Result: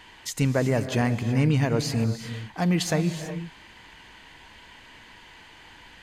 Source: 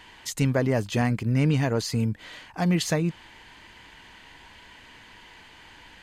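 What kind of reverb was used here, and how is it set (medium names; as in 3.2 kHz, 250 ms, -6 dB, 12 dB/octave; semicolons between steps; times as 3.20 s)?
gated-style reverb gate 400 ms rising, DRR 9 dB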